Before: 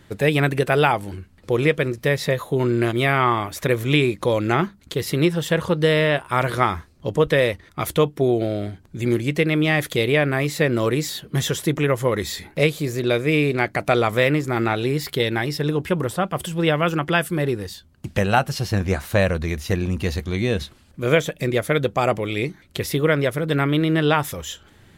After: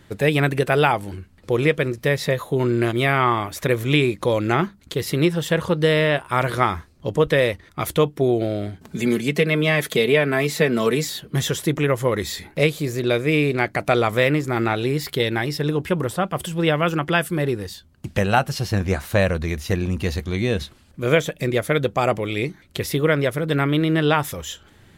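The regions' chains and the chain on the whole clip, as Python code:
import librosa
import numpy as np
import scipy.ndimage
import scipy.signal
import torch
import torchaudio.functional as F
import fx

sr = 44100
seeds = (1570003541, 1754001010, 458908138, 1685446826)

y = fx.chain(x, sr, fx.highpass(hz=95.0, slope=12),
    fx.comb(ms=4.6, depth=0.6),
    fx.band_squash(depth_pct=40), at=(8.81, 11.05))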